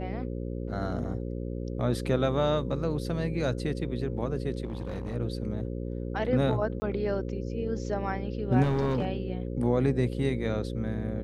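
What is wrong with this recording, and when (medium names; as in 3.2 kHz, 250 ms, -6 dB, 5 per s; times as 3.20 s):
buzz 60 Hz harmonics 9 -34 dBFS
4.64–5.15 s: clipped -30 dBFS
6.80–6.82 s: dropout 20 ms
8.62–9.08 s: clipped -22 dBFS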